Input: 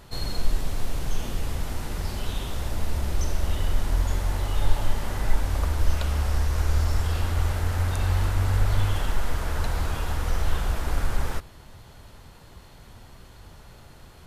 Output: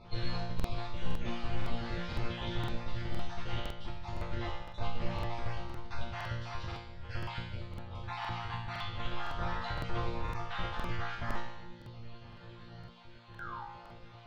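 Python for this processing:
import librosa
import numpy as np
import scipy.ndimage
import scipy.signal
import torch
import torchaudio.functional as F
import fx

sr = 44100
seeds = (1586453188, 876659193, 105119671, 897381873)

y = fx.spec_dropout(x, sr, seeds[0], share_pct=30)
y = scipy.signal.sosfilt(scipy.signal.butter(4, 4200.0, 'lowpass', fs=sr, output='sos'), y)
y = fx.peak_eq(y, sr, hz=84.0, db=6.0, octaves=0.59)
y = fx.over_compress(y, sr, threshold_db=-25.0, ratio=-0.5)
y = fx.spec_paint(y, sr, seeds[1], shape='fall', start_s=13.34, length_s=0.3, low_hz=770.0, high_hz=1700.0, level_db=-38.0)
y = fx.resonator_bank(y, sr, root=46, chord='fifth', decay_s=0.82)
y = fx.buffer_crackle(y, sr, first_s=0.55, period_s=0.51, block=2048, kind='repeat')
y = F.gain(torch.from_numpy(y), 13.0).numpy()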